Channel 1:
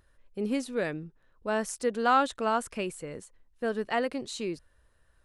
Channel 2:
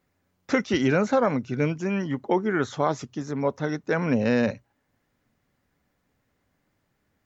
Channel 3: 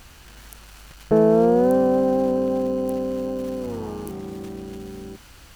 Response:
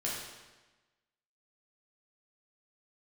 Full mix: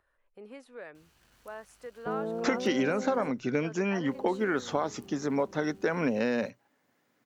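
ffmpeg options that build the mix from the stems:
-filter_complex "[0:a]acrossover=split=470 2400:gain=0.178 1 0.224[link_01][link_02][link_03];[link_01][link_02][link_03]amix=inputs=3:normalize=0,acompressor=threshold=-55dB:ratio=1.5,volume=-1.5dB[link_04];[1:a]highpass=220,acompressor=threshold=-27dB:ratio=6,adelay=1950,volume=2.5dB[link_05];[2:a]highpass=69,adelay=950,volume=-18dB,asplit=3[link_06][link_07][link_08];[link_06]atrim=end=3.31,asetpts=PTS-STARTPTS,afade=type=out:start_time=3.306:duration=0.004:curve=hsin[link_09];[link_07]atrim=start=3.31:end=4.07,asetpts=PTS-STARTPTS,volume=0[link_10];[link_08]atrim=start=4.07,asetpts=PTS-STARTPTS,afade=type=in:duration=0.004:curve=hsin[link_11];[link_09][link_10][link_11]concat=n=3:v=0:a=1[link_12];[link_04][link_05][link_12]amix=inputs=3:normalize=0"

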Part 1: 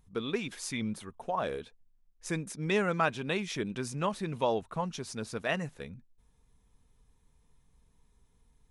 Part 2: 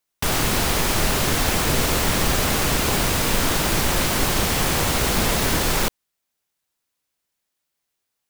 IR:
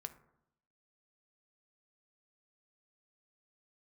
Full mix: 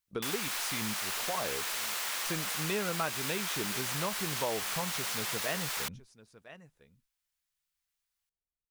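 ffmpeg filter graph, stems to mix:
-filter_complex "[0:a]agate=range=-39dB:threshold=-54dB:ratio=16:detection=peak,equalizer=frequency=240:width_type=o:width=0.22:gain=-4,volume=2.5dB,asplit=2[link_01][link_02];[link_02]volume=-22dB[link_03];[1:a]highpass=1100,volume=-6.5dB[link_04];[link_03]aecho=0:1:1006:1[link_05];[link_01][link_04][link_05]amix=inputs=3:normalize=0,acompressor=threshold=-35dB:ratio=2"

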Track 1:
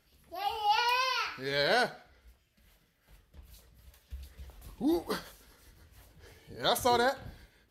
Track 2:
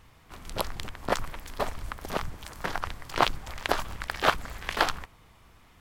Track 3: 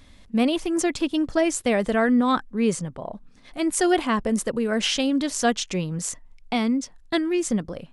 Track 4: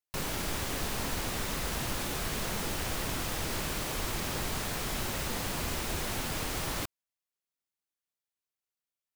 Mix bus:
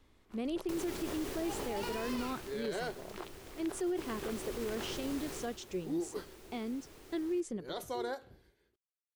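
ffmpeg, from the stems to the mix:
ffmpeg -i stem1.wav -i stem2.wav -i stem3.wav -i stem4.wav -filter_complex "[0:a]adelay=1050,volume=-13.5dB[link_01];[1:a]acompressor=threshold=-34dB:ratio=2.5,volume=-15dB[link_02];[2:a]volume=-19dB[link_03];[3:a]adelay=550,volume=-1dB,afade=type=out:start_time=2.04:duration=0.51:silence=0.298538,afade=type=in:start_time=3.7:duration=0.72:silence=0.375837,afade=type=out:start_time=5.36:duration=0.21:silence=0.251189[link_04];[link_01][link_02][link_03][link_04]amix=inputs=4:normalize=0,equalizer=frequency=380:width_type=o:width=0.59:gain=13.5,alimiter=level_in=4dB:limit=-24dB:level=0:latency=1:release=34,volume=-4dB" out.wav

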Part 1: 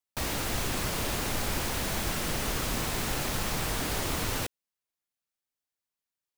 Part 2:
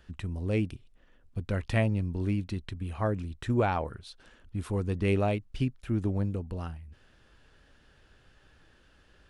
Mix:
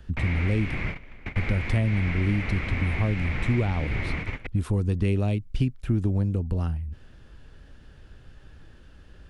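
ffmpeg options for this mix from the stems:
ffmpeg -i stem1.wav -i stem2.wav -filter_complex "[0:a]lowpass=frequency=2200:width_type=q:width=8.1,volume=-4.5dB[link_01];[1:a]volume=3dB,asplit=2[link_02][link_03];[link_03]apad=whole_len=281321[link_04];[link_01][link_04]sidechaingate=range=-23dB:threshold=-51dB:ratio=16:detection=peak[link_05];[link_05][link_02]amix=inputs=2:normalize=0,lowshelf=frequency=310:gain=11.5,acrossover=split=370|2500[link_06][link_07][link_08];[link_06]acompressor=threshold=-22dB:ratio=4[link_09];[link_07]acompressor=threshold=-35dB:ratio=4[link_10];[link_08]acompressor=threshold=-39dB:ratio=4[link_11];[link_09][link_10][link_11]amix=inputs=3:normalize=0" out.wav

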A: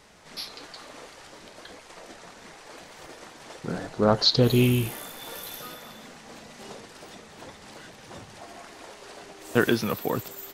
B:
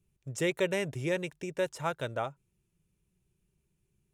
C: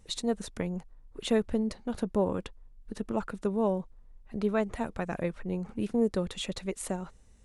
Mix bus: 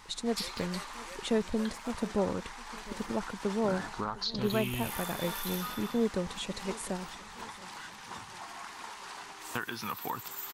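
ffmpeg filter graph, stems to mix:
ffmpeg -i stem1.wav -i stem2.wav -i stem3.wav -filter_complex "[0:a]lowshelf=frequency=740:width_type=q:width=3:gain=-7.5,acompressor=threshold=-32dB:ratio=12,volume=0.5dB[link_01];[1:a]highpass=620,aexciter=amount=4:drive=4.8:freq=5300,volume=-14.5dB[link_02];[2:a]volume=-2.5dB,asplit=2[link_03][link_04];[link_04]volume=-20dB,aecho=0:1:708|1416|2124|2832|3540|4248|4956|5664:1|0.52|0.27|0.141|0.0731|0.038|0.0198|0.0103[link_05];[link_01][link_02][link_03][link_05]amix=inputs=4:normalize=0" out.wav

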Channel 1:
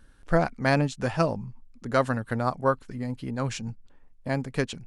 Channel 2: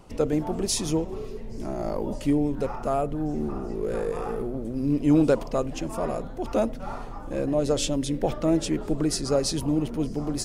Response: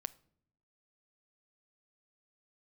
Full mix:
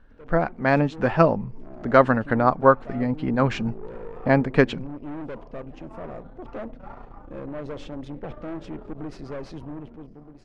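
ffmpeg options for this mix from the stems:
-filter_complex "[0:a]equalizer=frequency=110:width=1.5:gain=-6.5,volume=-0.5dB,asplit=2[link_01][link_02];[link_02]volume=-13.5dB[link_03];[1:a]aeval=exprs='(tanh(20*val(0)+0.6)-tanh(0.6))/20':channel_layout=same,volume=-16dB[link_04];[2:a]atrim=start_sample=2205[link_05];[link_03][link_05]afir=irnorm=-1:irlink=0[link_06];[link_01][link_04][link_06]amix=inputs=3:normalize=0,lowpass=2300,dynaudnorm=framelen=250:gausssize=7:maxgain=12dB"

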